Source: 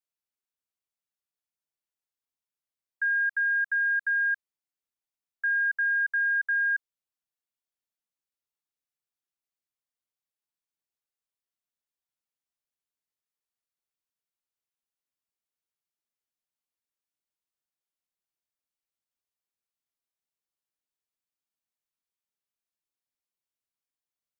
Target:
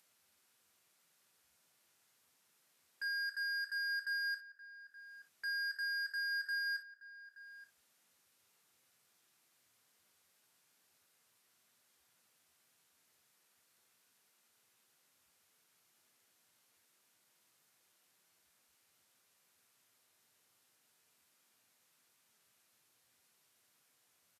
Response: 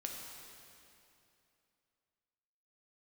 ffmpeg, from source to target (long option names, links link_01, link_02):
-filter_complex "[0:a]equalizer=frequency=1500:width=1.2:gain=2.5,alimiter=level_in=5dB:limit=-24dB:level=0:latency=1:release=255,volume=-5dB,acompressor=mode=upward:threshold=-52dB:ratio=2.5,aeval=exprs='0.0237*(abs(mod(val(0)/0.0237+3,4)-2)-1)':channel_layout=same,acrusher=bits=6:mode=log:mix=0:aa=0.000001,asplit=2[link_01][link_02];[link_02]adelay=874.6,volume=-13dB,highshelf=frequency=4000:gain=-19.7[link_03];[link_01][link_03]amix=inputs=2:normalize=0[link_04];[1:a]atrim=start_sample=2205,atrim=end_sample=3087[link_05];[link_04][link_05]afir=irnorm=-1:irlink=0" -ar 32000 -c:a libvorbis -b:a 64k